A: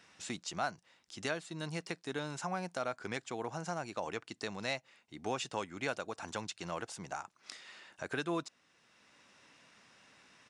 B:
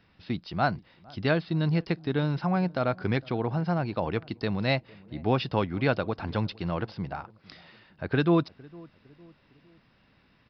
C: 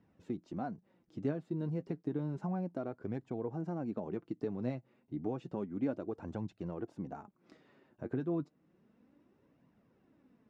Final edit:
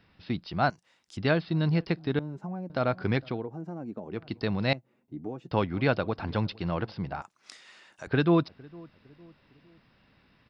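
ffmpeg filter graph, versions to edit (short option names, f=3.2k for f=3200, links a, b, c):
-filter_complex "[0:a]asplit=2[a][b];[2:a]asplit=3[c][d][e];[1:a]asplit=6[f][g][h][i][j][k];[f]atrim=end=0.702[l];[a]atrim=start=0.698:end=1.172[m];[g]atrim=start=1.168:end=2.192[n];[c]atrim=start=2.188:end=2.702[o];[h]atrim=start=2.698:end=3.48[p];[d]atrim=start=3.24:end=4.32[q];[i]atrim=start=4.08:end=4.732[r];[e]atrim=start=4.728:end=5.512[s];[j]atrim=start=5.508:end=7.222[t];[b]atrim=start=7.218:end=8.072[u];[k]atrim=start=8.068[v];[l][m]acrossfade=d=0.004:c1=hsin:c2=hsin[w];[w][n]acrossfade=d=0.004:c1=hsin:c2=hsin[x];[x][o]acrossfade=d=0.004:c1=hsin:c2=hsin[y];[y][p]acrossfade=d=0.004:c1=hsin:c2=hsin[z];[z][q]acrossfade=d=0.24:c1=tri:c2=tri[aa];[aa][r]acrossfade=d=0.24:c1=tri:c2=tri[ab];[ab][s]acrossfade=d=0.004:c1=hsin:c2=hsin[ac];[ac][t]acrossfade=d=0.004:c1=hsin:c2=hsin[ad];[ad][u]acrossfade=d=0.004:c1=hsin:c2=hsin[ae];[ae][v]acrossfade=d=0.004:c1=hsin:c2=hsin"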